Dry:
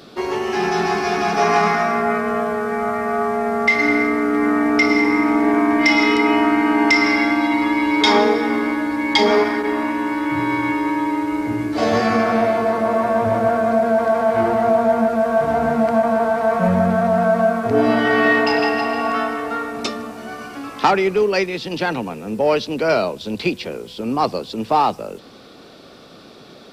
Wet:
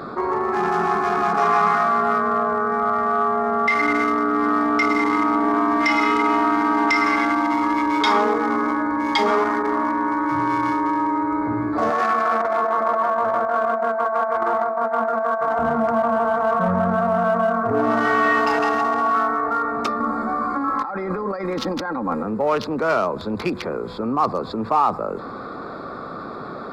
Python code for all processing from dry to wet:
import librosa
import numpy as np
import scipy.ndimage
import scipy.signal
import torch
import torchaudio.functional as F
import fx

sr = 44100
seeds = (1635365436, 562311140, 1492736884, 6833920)

y = fx.chain(x, sr, fx.weighting(curve='A'),
    fx.over_compress(threshold_db=-20.0, ratio=-0.5), at=(11.9, 15.59))
y = fx.chain(y, sr, fx.peak_eq(hz=2800.0, db=-14.0, octaves=0.29),
    fx.comb(ms=3.7, depth=0.69),
    fx.over_compress(threshold_db=-27.0, ratio=-1.0), at=(20.0, 22.23))
y = fx.wiener(y, sr, points=15)
y = fx.peak_eq(y, sr, hz=1200.0, db=13.0, octaves=0.78)
y = fx.env_flatten(y, sr, amount_pct=50)
y = F.gain(torch.from_numpy(y), -8.5).numpy()